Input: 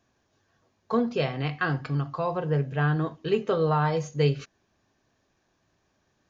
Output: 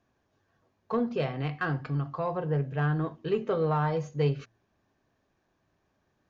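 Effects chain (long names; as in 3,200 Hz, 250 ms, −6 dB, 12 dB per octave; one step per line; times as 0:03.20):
high-shelf EQ 3,700 Hz −11 dB
hum removal 116.1 Hz, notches 3
in parallel at −6.5 dB: soft clipping −23.5 dBFS, distortion −12 dB
on the sum: level −5 dB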